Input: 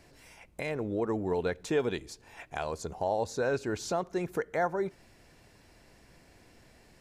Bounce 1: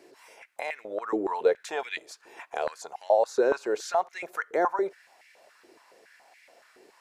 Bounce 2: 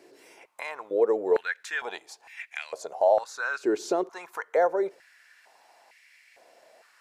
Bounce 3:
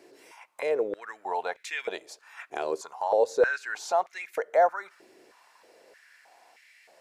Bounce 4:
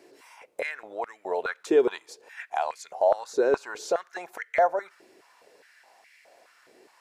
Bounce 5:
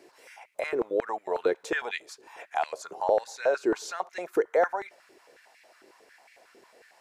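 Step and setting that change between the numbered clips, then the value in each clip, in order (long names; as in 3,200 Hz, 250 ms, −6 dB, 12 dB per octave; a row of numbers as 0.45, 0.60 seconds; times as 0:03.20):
high-pass on a step sequencer, speed: 7.1, 2.2, 3.2, 4.8, 11 Hertz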